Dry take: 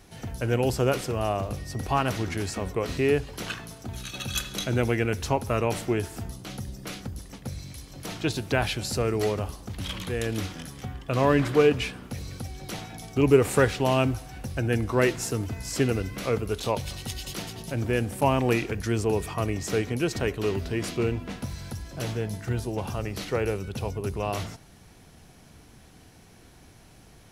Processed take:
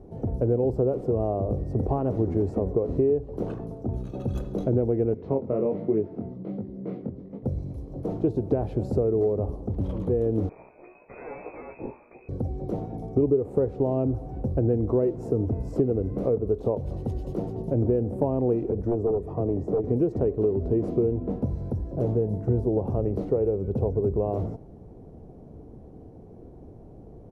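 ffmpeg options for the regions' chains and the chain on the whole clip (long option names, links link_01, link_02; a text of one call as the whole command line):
ffmpeg -i in.wav -filter_complex "[0:a]asettb=1/sr,asplit=3[link_01][link_02][link_03];[link_01]atrim=end=5.144[link_04];[link_02]atrim=start=5.14:end=7.43,asetpts=PTS-STARTPTS,afade=type=in:duration=0.004:curve=qsin,afade=type=out:start_time=2.286:duration=0.004:curve=qsin,flanger=delay=18.5:depth=5.2:speed=1.3,highpass=160,equalizer=frequency=180:width_type=q:width=4:gain=8,equalizer=frequency=800:width_type=q:width=4:gain=-5,equalizer=frequency=2100:width_type=q:width=4:gain=9,lowpass=frequency=4100:width=0.5412,lowpass=frequency=4100:width=1.3066[link_05];[link_03]atrim=start=7.426[link_06];[link_04][link_05]acrossfade=duration=0.004:curve1=hsin:curve2=qsin[link_07];[link_07][link_06]acrossfade=duration=0.004:curve1=qsin:curve2=hsin,asettb=1/sr,asplit=3[link_08][link_09][link_10];[link_08]atrim=end=10.494[link_11];[link_09]atrim=start=10.49:end=12.29,asetpts=PTS-STARTPTS,afade=type=in:duration=0.004:curve=qsin,afade=type=out:start_time=1.796:duration=0.004:curve=qsin,aeval=exprs='(tanh(31.6*val(0)+0.4)-tanh(0.4))/31.6':channel_layout=same,asplit=2[link_12][link_13];[link_13]adelay=17,volume=-3.5dB[link_14];[link_12][link_14]amix=inputs=2:normalize=0,atrim=end_sample=79380,lowpass=frequency=2200:width_type=q:width=0.5098,lowpass=frequency=2200:width_type=q:width=0.6013,lowpass=frequency=2200:width_type=q:width=0.9,lowpass=frequency=2200:width_type=q:width=2.563,afreqshift=-2600[link_15];[link_10]atrim=start=12.286[link_16];[link_11][link_15]acrossfade=duration=0.004:curve1=hsin:curve2=qsin[link_17];[link_17][link_16]acrossfade=duration=0.004:curve1=qsin:curve2=hsin,asettb=1/sr,asplit=3[link_18][link_19][link_20];[link_18]atrim=end=18.714[link_21];[link_19]atrim=start=18.71:end=19.84,asetpts=PTS-STARTPTS,afade=type=in:duration=0.004:curve=qsin,afade=type=out:start_time=1.126:duration=0.004:curve=qsin,agate=range=-14dB:threshold=-23dB:ratio=16:release=100:detection=peak,acrossover=split=190|540|1200[link_22][link_23][link_24][link_25];[link_22]acompressor=threshold=-47dB:ratio=3[link_26];[link_23]acompressor=threshold=-42dB:ratio=3[link_27];[link_24]acompressor=threshold=-48dB:ratio=3[link_28];[link_25]acompressor=threshold=-59dB:ratio=3[link_29];[link_26][link_27][link_28][link_29]amix=inputs=4:normalize=0,aeval=exprs='0.0501*sin(PI/2*2.82*val(0)/0.0501)':channel_layout=same[link_30];[link_20]atrim=start=19.836[link_31];[link_21][link_30]acrossfade=duration=0.004:curve1=hsin:curve2=qsin[link_32];[link_32][link_31]acrossfade=duration=0.004:curve1=qsin:curve2=hsin,firequalizer=gain_entry='entry(160,0);entry(440,10);entry(1600,-15);entry(3000,-20)':delay=0.05:min_phase=1,acompressor=threshold=-24dB:ratio=5,tiltshelf=frequency=660:gain=7" out.wav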